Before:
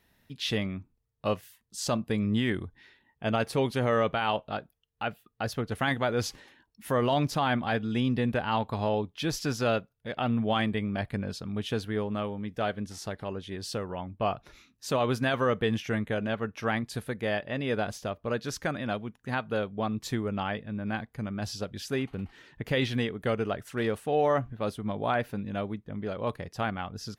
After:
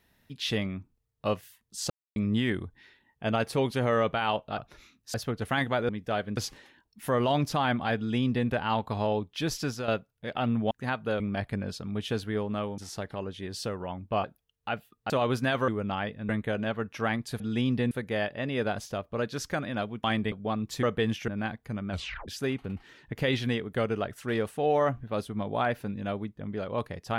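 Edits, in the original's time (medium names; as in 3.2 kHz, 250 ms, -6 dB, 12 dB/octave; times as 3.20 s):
1.90–2.16 s: mute
4.58–5.44 s: swap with 14.33–14.89 s
7.79–8.30 s: copy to 17.03 s
9.33–9.70 s: fade out equal-power, to -10.5 dB
10.53–10.81 s: swap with 19.16–19.65 s
12.39–12.87 s: move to 6.19 s
15.47–15.92 s: swap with 20.16–20.77 s
21.39 s: tape stop 0.38 s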